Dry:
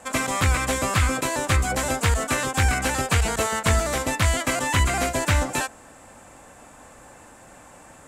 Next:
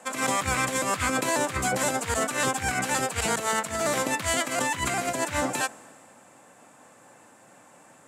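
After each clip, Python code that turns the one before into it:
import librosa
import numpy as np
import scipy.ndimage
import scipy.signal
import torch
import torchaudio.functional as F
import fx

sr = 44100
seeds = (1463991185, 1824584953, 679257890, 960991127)

y = scipy.signal.sosfilt(scipy.signal.butter(4, 120.0, 'highpass', fs=sr, output='sos'), x)
y = fx.over_compress(y, sr, threshold_db=-26.0, ratio=-0.5)
y = fx.band_widen(y, sr, depth_pct=40)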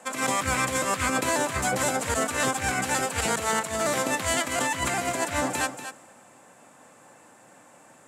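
y = x + 10.0 ** (-10.0 / 20.0) * np.pad(x, (int(238 * sr / 1000.0), 0))[:len(x)]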